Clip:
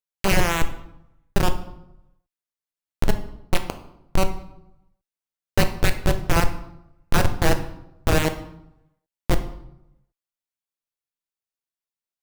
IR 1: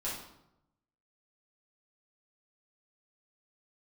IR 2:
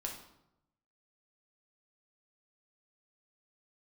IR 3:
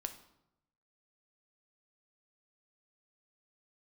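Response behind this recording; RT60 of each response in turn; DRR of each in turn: 3; 0.85, 0.85, 0.85 seconds; −8.5, 0.0, 7.0 decibels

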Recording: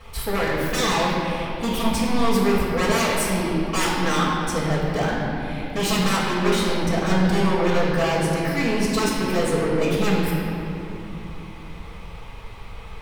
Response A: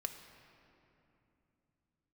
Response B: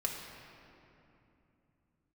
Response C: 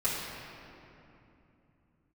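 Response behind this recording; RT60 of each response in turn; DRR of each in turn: C; 2.9, 2.9, 2.9 seconds; 5.0, −1.5, −10.5 decibels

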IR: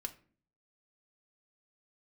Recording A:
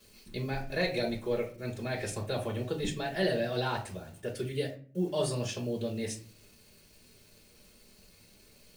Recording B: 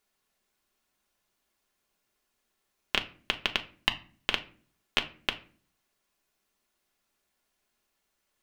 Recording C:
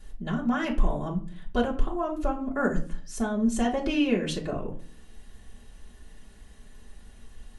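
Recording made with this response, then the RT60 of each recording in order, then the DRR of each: B; 0.45, 0.45, 0.45 seconds; −10.0, 4.0, −5.0 decibels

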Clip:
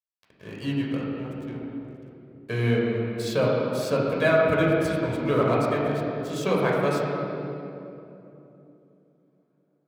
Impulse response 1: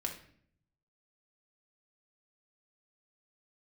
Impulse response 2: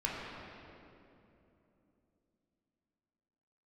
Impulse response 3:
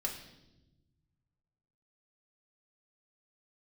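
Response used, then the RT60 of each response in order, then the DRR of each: 2; 0.60, 3.0, 1.0 seconds; 1.0, −5.0, −0.5 decibels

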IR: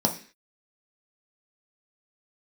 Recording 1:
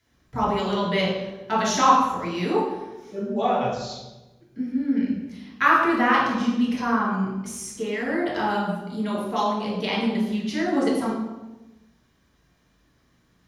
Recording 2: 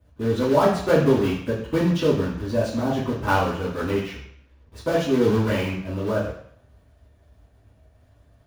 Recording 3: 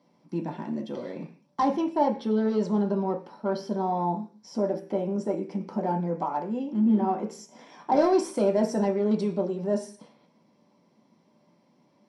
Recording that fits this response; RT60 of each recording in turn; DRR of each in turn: 3; 1.1, 0.65, 0.40 seconds; −5.5, −9.0, 2.0 decibels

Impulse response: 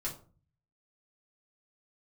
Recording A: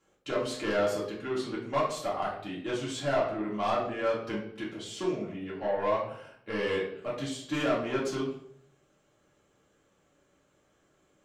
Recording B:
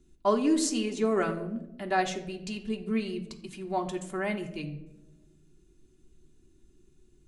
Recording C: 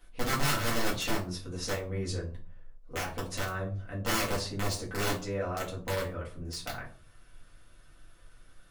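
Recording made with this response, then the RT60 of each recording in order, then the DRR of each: C; 0.65, 0.95, 0.40 seconds; −6.5, 2.5, −6.0 decibels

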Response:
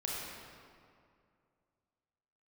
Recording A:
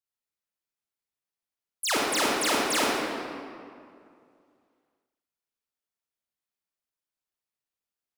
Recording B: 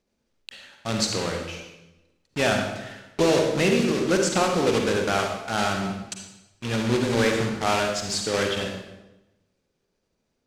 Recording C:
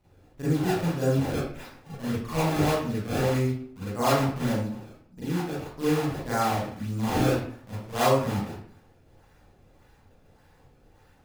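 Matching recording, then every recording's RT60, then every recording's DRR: A; 2.3, 1.0, 0.60 seconds; −4.5, 2.0, −12.0 decibels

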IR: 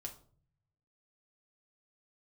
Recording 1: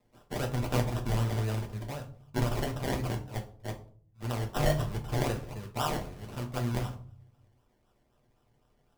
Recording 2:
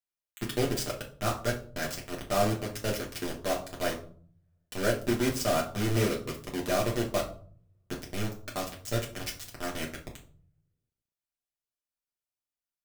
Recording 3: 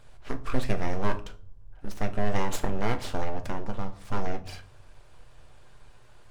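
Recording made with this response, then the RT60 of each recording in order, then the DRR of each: 1; 0.50, 0.50, 0.50 seconds; 1.5, −3.0, 6.0 decibels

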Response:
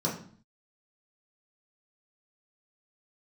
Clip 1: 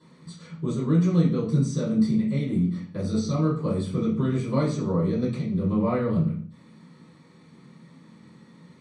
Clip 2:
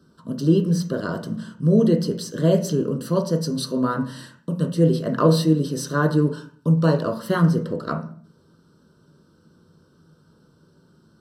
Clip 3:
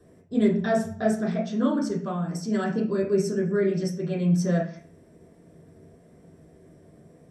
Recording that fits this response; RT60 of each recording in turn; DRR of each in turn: 3; 0.50, 0.50, 0.50 seconds; −14.5, 2.0, −5.0 decibels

